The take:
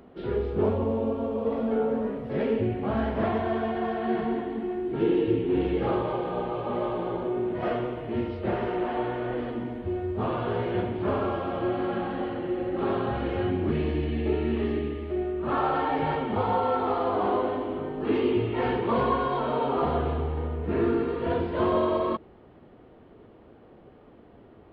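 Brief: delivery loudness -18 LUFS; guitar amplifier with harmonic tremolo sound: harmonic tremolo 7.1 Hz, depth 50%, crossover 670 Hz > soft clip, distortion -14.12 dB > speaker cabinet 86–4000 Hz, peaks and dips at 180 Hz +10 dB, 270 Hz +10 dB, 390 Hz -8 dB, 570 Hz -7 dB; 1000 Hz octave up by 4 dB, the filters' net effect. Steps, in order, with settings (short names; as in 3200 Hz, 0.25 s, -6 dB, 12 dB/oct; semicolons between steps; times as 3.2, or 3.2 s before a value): bell 1000 Hz +6 dB; harmonic tremolo 7.1 Hz, depth 50%, crossover 670 Hz; soft clip -23 dBFS; speaker cabinet 86–4000 Hz, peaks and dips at 180 Hz +10 dB, 270 Hz +10 dB, 390 Hz -8 dB, 570 Hz -7 dB; gain +12 dB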